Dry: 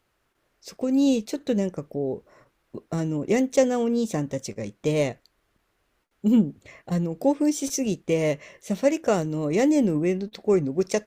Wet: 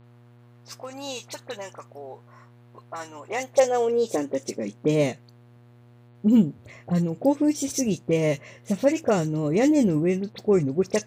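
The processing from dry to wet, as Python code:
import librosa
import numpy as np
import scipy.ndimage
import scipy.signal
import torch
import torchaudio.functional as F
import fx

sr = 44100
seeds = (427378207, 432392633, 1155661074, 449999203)

y = fx.dispersion(x, sr, late='highs', ms=42.0, hz=2500.0)
y = fx.filter_sweep_highpass(y, sr, from_hz=980.0, to_hz=88.0, start_s=3.23, end_s=5.76, q=2.2)
y = fx.dmg_buzz(y, sr, base_hz=120.0, harmonics=38, level_db=-52.0, tilt_db=-8, odd_only=False)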